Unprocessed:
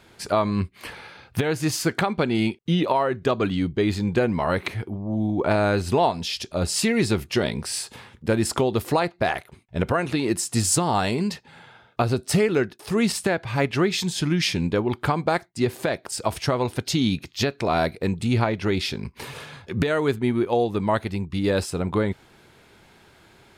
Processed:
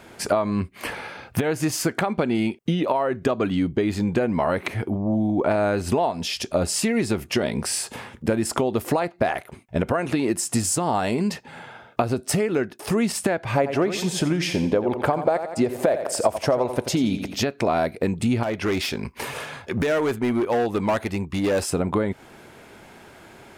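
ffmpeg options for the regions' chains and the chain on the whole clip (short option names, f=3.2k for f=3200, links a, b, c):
-filter_complex "[0:a]asettb=1/sr,asplit=3[a][b][c];[a]atrim=end=13.554[d];[b]atrim=start=13.55:end=17.4,asetpts=PTS-STARTPTS,afade=t=in:d=0.004:c=qsin,afade=t=out:st=3.846:d=0.004:c=qsin,equalizer=f=580:w=1.2:g=9.5,aecho=1:1:86|172|258|344:0.266|0.0958|0.0345|0.0124,atrim=end_sample=169785[e];[c]atrim=start=17.396[f];[d][e]acrossfade=d=0.004:c1=hsin:c2=qsin[g];[g][f]acrossfade=d=0.004:c1=qsin:c2=hsin,asettb=1/sr,asplit=3[h][i][j];[h]atrim=end=18.434[k];[i]atrim=start=18.43:end=21.7,asetpts=PTS-STARTPTS,afade=t=in:d=0.004:c=qsin,afade=t=out:st=3.266:d=0.004:c=qsin,equalizer=f=170:w=0.47:g=-5.5,asoftclip=type=hard:threshold=-23.5dB[l];[j]atrim=start=21.696[m];[k][l]acrossfade=d=0.004:c1=hsin:c2=qsin[n];[n][m]acrossfade=d=0.004:c1=qsin:c2=hsin,lowshelf=f=190:g=-4.5,acompressor=threshold=-28dB:ratio=6,equalizer=f=250:t=o:w=0.67:g=4,equalizer=f=630:t=o:w=0.67:g=4,equalizer=f=4k:t=o:w=0.67:g=-6,volume=7dB"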